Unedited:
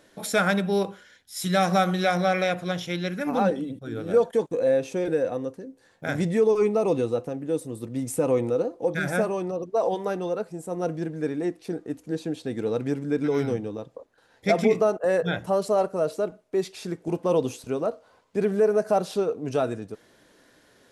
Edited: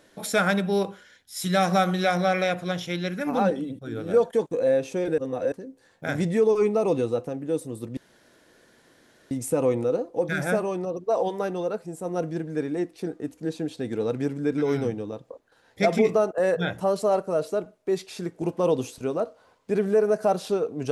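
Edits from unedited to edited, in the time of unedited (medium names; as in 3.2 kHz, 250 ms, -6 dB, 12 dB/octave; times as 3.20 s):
5.18–5.52 s: reverse
7.97 s: insert room tone 1.34 s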